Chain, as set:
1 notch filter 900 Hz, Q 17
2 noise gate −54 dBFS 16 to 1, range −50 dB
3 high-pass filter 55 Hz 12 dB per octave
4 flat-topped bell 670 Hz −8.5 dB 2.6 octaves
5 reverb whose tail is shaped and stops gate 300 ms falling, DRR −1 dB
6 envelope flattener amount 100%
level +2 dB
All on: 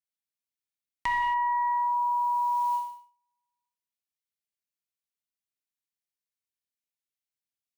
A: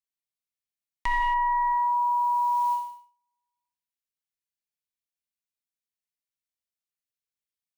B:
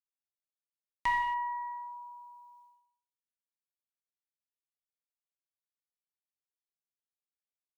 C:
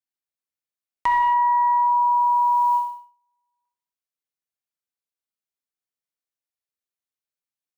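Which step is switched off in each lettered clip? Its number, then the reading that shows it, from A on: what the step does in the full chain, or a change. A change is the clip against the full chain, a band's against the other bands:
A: 3, change in crest factor −2.0 dB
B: 6, change in crest factor +6.0 dB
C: 4, change in crest factor −4.0 dB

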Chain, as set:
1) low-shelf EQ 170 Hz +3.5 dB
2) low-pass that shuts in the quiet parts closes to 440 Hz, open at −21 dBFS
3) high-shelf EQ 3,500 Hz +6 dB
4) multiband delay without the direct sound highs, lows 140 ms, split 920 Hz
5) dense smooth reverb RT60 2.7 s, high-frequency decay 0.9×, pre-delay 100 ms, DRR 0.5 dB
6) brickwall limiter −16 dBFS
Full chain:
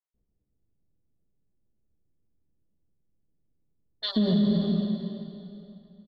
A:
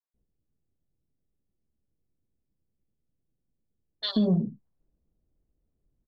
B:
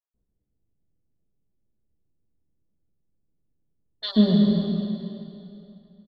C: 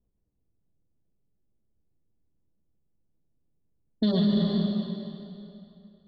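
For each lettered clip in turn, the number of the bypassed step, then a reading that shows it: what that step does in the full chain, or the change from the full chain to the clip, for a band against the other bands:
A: 5, change in momentary loudness spread −8 LU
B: 6, change in crest factor +6.0 dB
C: 4, 4 kHz band −2.5 dB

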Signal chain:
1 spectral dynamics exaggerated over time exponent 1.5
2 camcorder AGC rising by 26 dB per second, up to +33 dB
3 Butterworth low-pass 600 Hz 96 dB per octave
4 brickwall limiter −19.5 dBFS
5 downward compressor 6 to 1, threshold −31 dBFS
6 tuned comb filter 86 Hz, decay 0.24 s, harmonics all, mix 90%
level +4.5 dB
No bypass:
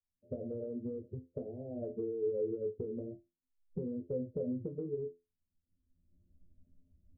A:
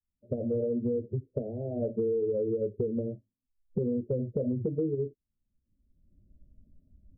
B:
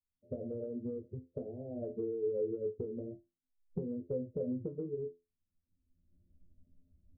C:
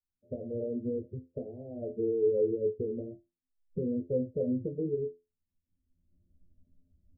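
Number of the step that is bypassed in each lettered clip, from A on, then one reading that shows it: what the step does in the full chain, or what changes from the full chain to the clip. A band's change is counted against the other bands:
6, change in momentary loudness spread −2 LU
4, change in crest factor +2.0 dB
5, average gain reduction 4.0 dB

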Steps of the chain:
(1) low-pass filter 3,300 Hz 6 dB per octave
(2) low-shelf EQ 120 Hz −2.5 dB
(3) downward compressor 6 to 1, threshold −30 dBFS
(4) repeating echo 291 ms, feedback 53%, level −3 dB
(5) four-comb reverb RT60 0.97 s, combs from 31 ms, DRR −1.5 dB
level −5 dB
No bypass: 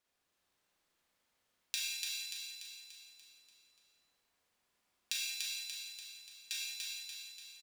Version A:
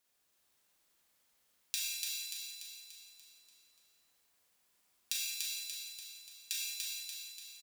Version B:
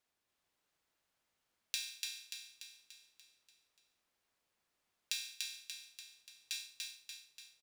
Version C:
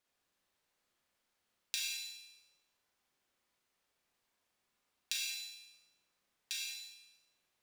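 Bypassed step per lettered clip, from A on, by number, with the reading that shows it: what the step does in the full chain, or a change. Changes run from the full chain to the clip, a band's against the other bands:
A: 1, change in crest factor +3.0 dB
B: 5, echo-to-direct ratio 5.0 dB to −1.5 dB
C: 4, echo-to-direct ratio 5.0 dB to 1.5 dB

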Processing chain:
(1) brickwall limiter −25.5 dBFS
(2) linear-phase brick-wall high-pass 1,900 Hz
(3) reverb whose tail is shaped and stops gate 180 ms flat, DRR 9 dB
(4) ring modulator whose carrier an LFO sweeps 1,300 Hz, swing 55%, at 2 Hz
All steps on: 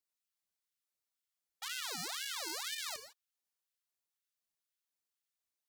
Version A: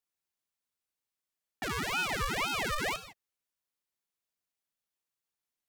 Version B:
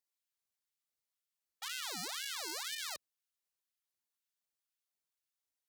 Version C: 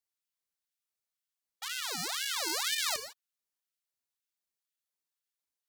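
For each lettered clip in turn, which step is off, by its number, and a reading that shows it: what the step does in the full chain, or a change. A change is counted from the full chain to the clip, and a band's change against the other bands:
2, 8 kHz band −13.5 dB
3, change in momentary loudness spread −3 LU
1, average gain reduction 6.5 dB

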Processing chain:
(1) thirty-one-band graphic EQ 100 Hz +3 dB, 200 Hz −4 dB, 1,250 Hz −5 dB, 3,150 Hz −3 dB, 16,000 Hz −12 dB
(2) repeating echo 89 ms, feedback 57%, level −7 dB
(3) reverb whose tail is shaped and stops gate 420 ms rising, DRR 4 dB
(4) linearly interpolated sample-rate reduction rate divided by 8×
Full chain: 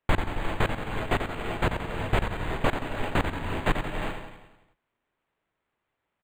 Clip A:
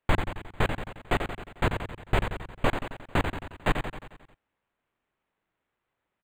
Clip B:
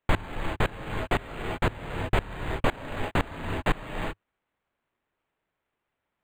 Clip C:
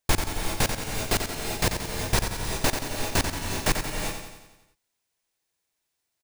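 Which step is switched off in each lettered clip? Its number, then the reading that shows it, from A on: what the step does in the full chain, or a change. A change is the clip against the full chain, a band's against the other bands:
3, change in momentary loudness spread +3 LU
2, change in momentary loudness spread +1 LU
4, 8 kHz band +20.5 dB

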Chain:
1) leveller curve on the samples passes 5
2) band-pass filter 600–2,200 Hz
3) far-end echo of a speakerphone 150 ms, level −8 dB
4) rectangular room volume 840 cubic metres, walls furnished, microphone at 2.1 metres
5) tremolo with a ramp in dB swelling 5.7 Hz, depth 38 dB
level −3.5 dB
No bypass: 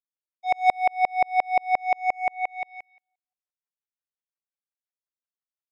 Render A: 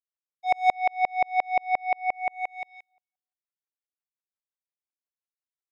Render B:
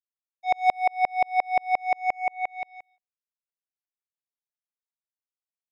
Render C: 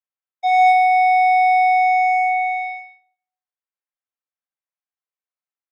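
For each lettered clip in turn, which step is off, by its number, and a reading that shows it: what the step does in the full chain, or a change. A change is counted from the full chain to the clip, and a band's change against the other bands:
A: 3, change in integrated loudness −2.0 LU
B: 4, change in integrated loudness −1.5 LU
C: 5, change in momentary loudness spread +1 LU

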